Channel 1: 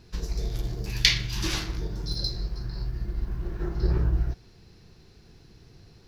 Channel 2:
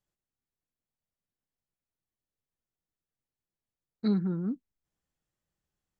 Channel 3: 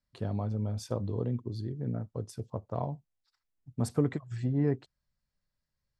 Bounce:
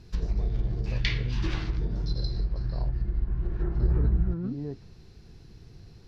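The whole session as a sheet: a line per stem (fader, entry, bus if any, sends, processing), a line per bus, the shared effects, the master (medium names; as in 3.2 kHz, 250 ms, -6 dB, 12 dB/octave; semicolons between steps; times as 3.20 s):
-2.0 dB, 0.00 s, no send, bass shelf 220 Hz +7 dB
-1.0 dB, 0.00 s, no send, compressor with a negative ratio -31 dBFS
-8.0 dB, 0.00 s, no send, low-pass 1.2 kHz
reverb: none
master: low-pass that closes with the level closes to 2.5 kHz, closed at -20.5 dBFS; compression 1.5:1, threshold -26 dBFS, peak gain reduction 4.5 dB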